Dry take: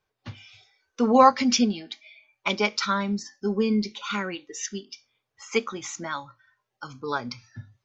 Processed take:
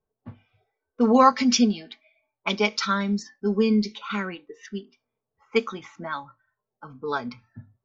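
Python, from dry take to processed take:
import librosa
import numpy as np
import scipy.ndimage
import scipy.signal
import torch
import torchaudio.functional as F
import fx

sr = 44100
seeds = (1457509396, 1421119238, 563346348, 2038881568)

y = x + 0.37 * np.pad(x, (int(4.5 * sr / 1000.0), 0))[:len(x)]
y = fx.env_lowpass(y, sr, base_hz=620.0, full_db=-20.0)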